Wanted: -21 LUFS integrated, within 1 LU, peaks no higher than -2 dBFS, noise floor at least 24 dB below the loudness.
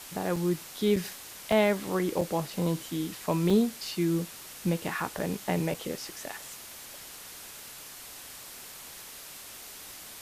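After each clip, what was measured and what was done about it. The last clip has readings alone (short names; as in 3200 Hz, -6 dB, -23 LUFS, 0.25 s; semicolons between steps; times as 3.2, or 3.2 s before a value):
dropouts 7; longest dropout 4.0 ms; noise floor -46 dBFS; noise floor target -54 dBFS; loudness -30.0 LUFS; peak -12.5 dBFS; loudness target -21.0 LUFS
-> interpolate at 0.36/0.96/1.52/2.21/3.5/5.19/5.74, 4 ms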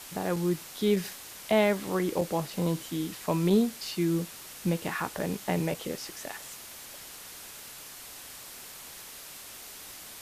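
dropouts 0; noise floor -46 dBFS; noise floor target -54 dBFS
-> denoiser 8 dB, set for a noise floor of -46 dBFS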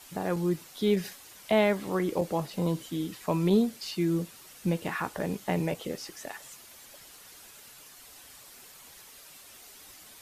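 noise floor -51 dBFS; noise floor target -54 dBFS
-> denoiser 6 dB, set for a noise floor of -51 dBFS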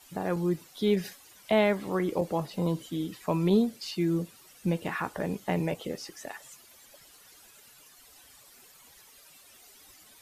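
noise floor -56 dBFS; loudness -29.5 LUFS; peak -13.0 dBFS; loudness target -21.0 LUFS
-> gain +8.5 dB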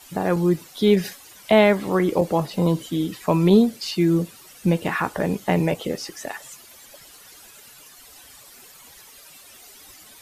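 loudness -21.0 LUFS; peak -4.5 dBFS; noise floor -47 dBFS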